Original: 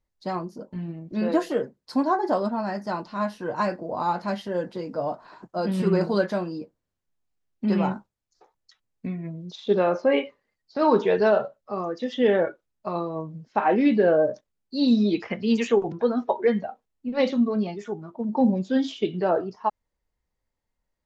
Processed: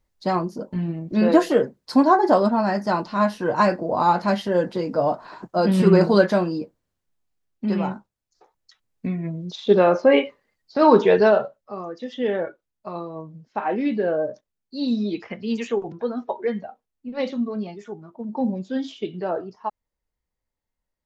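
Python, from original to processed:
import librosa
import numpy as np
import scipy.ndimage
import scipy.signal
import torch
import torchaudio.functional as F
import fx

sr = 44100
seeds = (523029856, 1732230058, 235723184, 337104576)

y = fx.gain(x, sr, db=fx.line((6.45, 7.0), (7.94, -1.5), (9.24, 5.5), (11.16, 5.5), (11.78, -3.5)))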